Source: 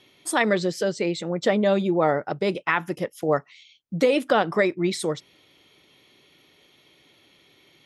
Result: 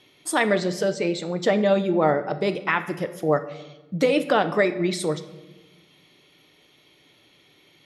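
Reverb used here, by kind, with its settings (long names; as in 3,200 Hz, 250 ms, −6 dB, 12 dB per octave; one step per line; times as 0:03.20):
rectangular room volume 560 cubic metres, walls mixed, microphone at 0.45 metres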